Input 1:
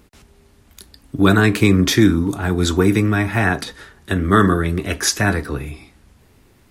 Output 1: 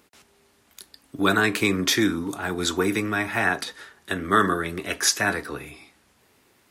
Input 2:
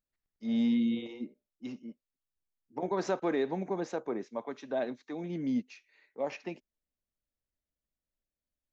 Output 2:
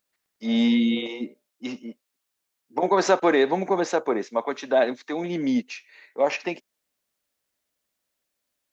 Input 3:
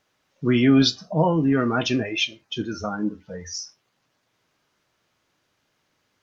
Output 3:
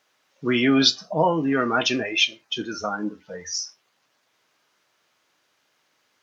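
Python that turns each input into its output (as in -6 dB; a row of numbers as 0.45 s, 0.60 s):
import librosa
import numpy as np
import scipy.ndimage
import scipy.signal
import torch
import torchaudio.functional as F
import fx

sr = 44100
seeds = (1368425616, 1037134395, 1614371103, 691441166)

y = fx.highpass(x, sr, hz=550.0, slope=6)
y = y * 10.0 ** (-26 / 20.0) / np.sqrt(np.mean(np.square(y)))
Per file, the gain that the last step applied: -2.0 dB, +15.0 dB, +4.0 dB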